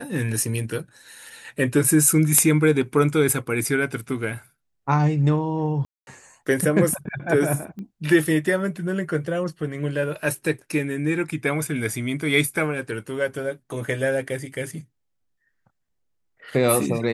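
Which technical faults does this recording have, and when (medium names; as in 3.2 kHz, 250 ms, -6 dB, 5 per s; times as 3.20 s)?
5.85–6.07 s: dropout 221 ms
7.79 s: pop -26 dBFS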